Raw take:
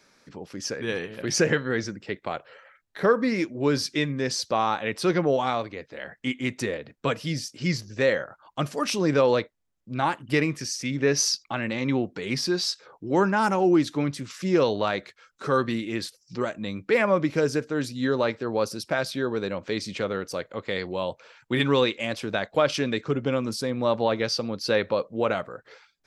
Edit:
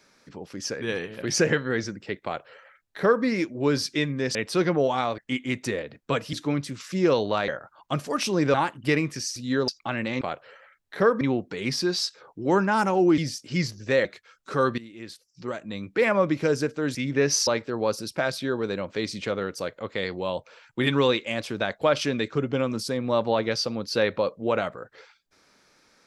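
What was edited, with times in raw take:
2.24–3.24 copy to 11.86
4.35–4.84 cut
5.67–6.13 cut
7.28–8.15 swap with 13.83–14.98
9.21–9.99 cut
10.81–11.33 swap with 17.88–18.2
15.71–17.02 fade in, from -17.5 dB

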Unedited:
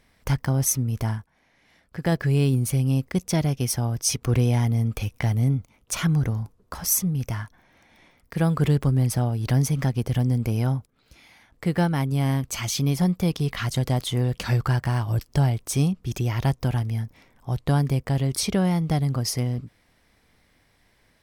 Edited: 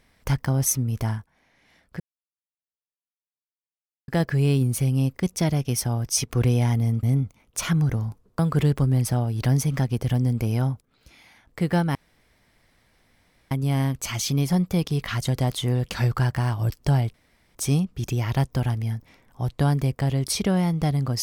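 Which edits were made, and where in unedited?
2 insert silence 2.08 s
4.95–5.37 cut
6.73–8.44 cut
12 insert room tone 1.56 s
15.63 insert room tone 0.41 s

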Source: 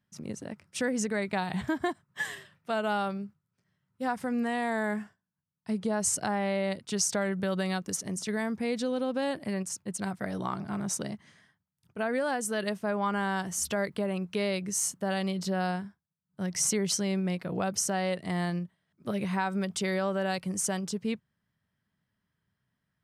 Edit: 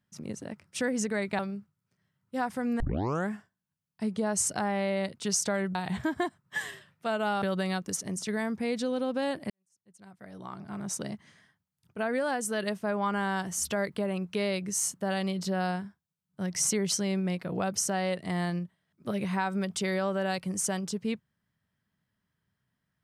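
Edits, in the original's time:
1.39–3.06 move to 7.42
4.47 tape start 0.48 s
9.5–11.13 fade in quadratic

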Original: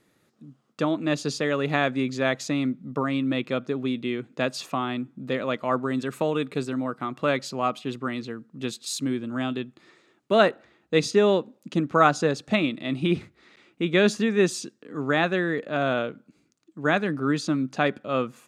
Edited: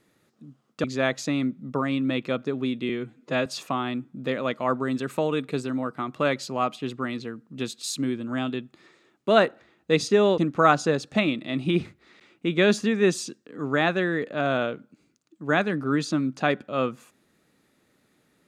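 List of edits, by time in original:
0.84–2.06 cut
4.11–4.49 stretch 1.5×
11.41–11.74 cut

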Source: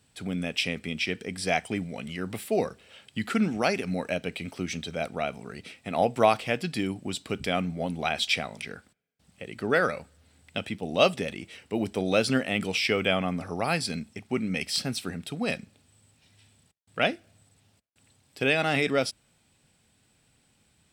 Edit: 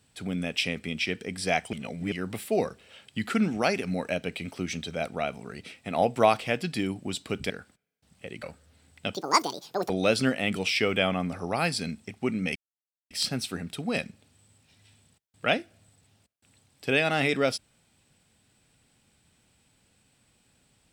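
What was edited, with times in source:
1.73–2.12 reverse
7.5–8.67 cut
9.6–9.94 cut
10.65–11.98 speed 176%
14.64 insert silence 0.55 s

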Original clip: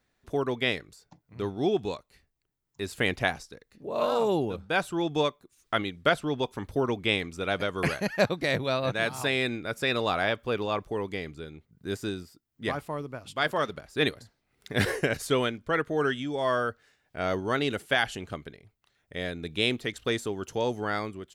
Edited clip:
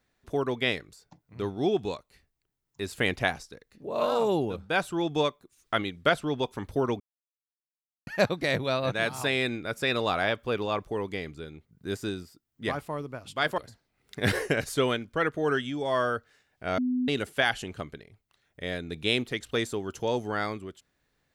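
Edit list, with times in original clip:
7–8.07 mute
13.58–14.11 cut
17.31–17.61 bleep 251 Hz -24 dBFS

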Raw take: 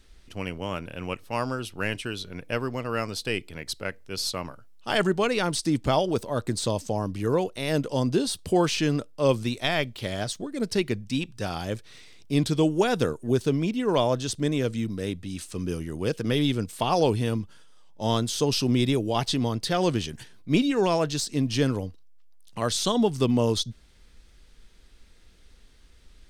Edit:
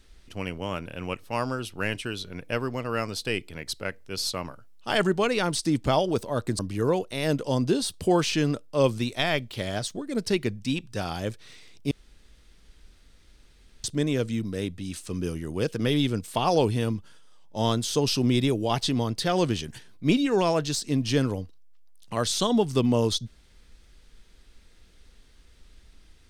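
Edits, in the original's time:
6.59–7.04 cut
12.36–14.29 room tone

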